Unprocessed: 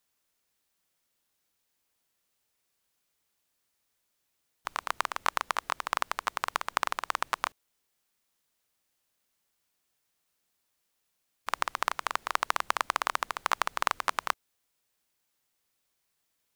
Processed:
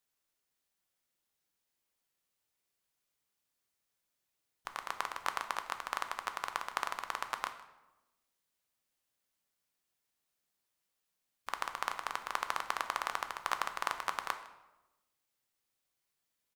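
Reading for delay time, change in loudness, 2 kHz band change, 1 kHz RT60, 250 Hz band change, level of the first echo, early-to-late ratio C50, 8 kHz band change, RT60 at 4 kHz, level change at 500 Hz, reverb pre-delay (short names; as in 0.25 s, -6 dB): 0.156 s, -6.5 dB, -6.0 dB, 0.95 s, -6.0 dB, -20.5 dB, 10.5 dB, -6.5 dB, 0.70 s, -6.0 dB, 4 ms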